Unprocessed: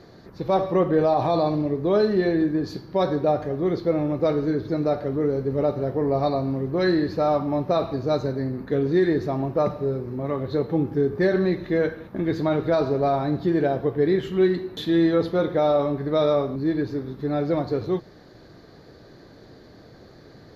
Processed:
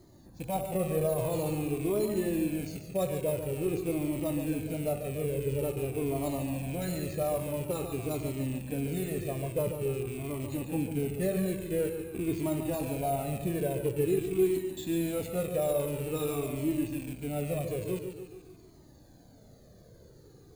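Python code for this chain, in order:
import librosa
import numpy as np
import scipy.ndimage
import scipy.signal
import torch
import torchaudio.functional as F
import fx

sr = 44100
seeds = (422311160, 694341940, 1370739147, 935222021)

p1 = fx.rattle_buzz(x, sr, strikes_db=-32.0, level_db=-24.0)
p2 = np.repeat(p1[::4], 4)[:len(p1)]
p3 = fx.peak_eq(p2, sr, hz=1600.0, db=-11.0, octaves=2.2)
p4 = p3 + fx.echo_feedback(p3, sr, ms=143, feedback_pct=53, wet_db=-7.5, dry=0)
p5 = fx.comb_cascade(p4, sr, direction='falling', hz=0.48)
y = p5 * librosa.db_to_amplitude(-2.0)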